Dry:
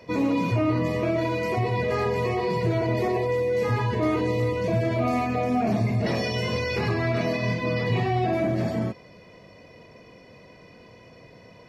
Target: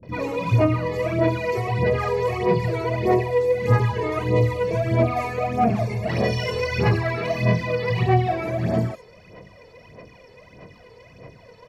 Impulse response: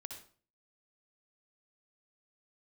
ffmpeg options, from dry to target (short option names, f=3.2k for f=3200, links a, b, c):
-filter_complex "[0:a]acrossover=split=260|4400[a][b][c];[b]adelay=30[d];[c]adelay=90[e];[a][d][e]amix=inputs=3:normalize=0,aphaser=in_gain=1:out_gain=1:delay=2.3:decay=0.63:speed=1.6:type=sinusoidal"